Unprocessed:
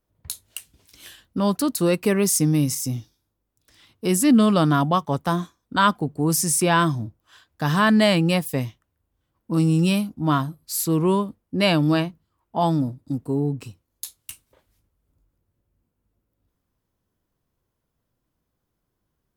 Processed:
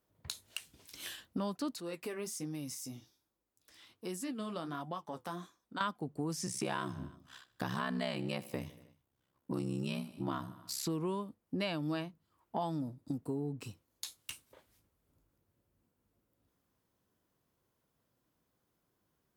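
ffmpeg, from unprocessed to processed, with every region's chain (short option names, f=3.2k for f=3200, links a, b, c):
-filter_complex "[0:a]asettb=1/sr,asplit=3[a][b][c];[a]atrim=end=1.804[d];[b]atrim=start=1.8:end=5.81,asetpts=PTS-STARTPTS,afade=t=in:d=0.004:c=qsin,afade=t=out:st=4.006:d=0.004:c=qsin,equalizer=f=130:w=1:g=-5.5,acompressor=threshold=-51dB:ratio=1.5:attack=3.2:release=140:knee=1:detection=peak,flanger=delay=5.2:depth=8:regen=-51:speed=1.3:shape=sinusoidal[e];[c]atrim=start=5.806[f];[d][e]acrossfade=d=0.004:c1=hsin:c2=qsin[g];[g][f]acrossfade=d=0.004:c1=qsin:c2=hsin,asettb=1/sr,asplit=3[h][i][j];[h]atrim=end=6.464[k];[i]atrim=start=6.46:end=10.84,asetpts=PTS-STARTPTS,afade=t=in:d=0.004:c=qsin,afade=t=out:st=4.376:d=0.004:c=qsin,aeval=exprs='val(0)*sin(2*PI*33*n/s)':c=same,aecho=1:1:78|156|234|312:0.1|0.051|0.026|0.0133,atrim=end_sample=193158[l];[j]atrim=start=10.836[m];[k][l]acrossfade=d=0.004:c1=hsin:c2=qsin[n];[n][m]acrossfade=d=0.004:c1=qsin:c2=hsin,acrossover=split=6400[o][p];[p]acompressor=threshold=-43dB:ratio=4:attack=1:release=60[q];[o][q]amix=inputs=2:normalize=0,highpass=f=170:p=1,acompressor=threshold=-36dB:ratio=4"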